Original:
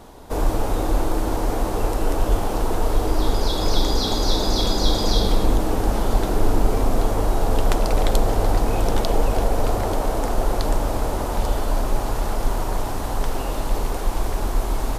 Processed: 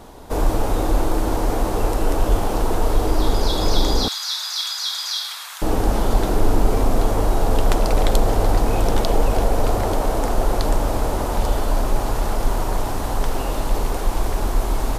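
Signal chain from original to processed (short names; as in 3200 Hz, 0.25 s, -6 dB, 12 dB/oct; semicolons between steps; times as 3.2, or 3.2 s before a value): 4.08–5.62 inverse Chebyshev high-pass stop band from 300 Hz, stop band 70 dB; in parallel at -11 dB: soft clip -11.5 dBFS, distortion -18 dB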